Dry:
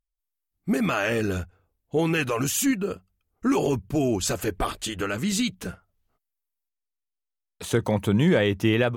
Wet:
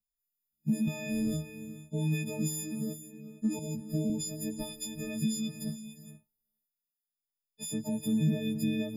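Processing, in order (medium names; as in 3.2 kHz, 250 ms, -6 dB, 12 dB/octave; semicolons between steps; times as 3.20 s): partials quantised in pitch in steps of 6 st; resonant low shelf 110 Hz -13 dB, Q 1.5; static phaser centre 370 Hz, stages 6; compression, threshold -24 dBFS, peak gain reduction 14.5 dB; gated-style reverb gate 490 ms rising, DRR 9.5 dB; 0.87–1.37 s: transient shaper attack -4 dB, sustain +11 dB; FFT filter 120 Hz 0 dB, 1.3 kHz -27 dB, 2.1 kHz -18 dB; 3.59–4.10 s: three bands expanded up and down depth 70%; trim +5.5 dB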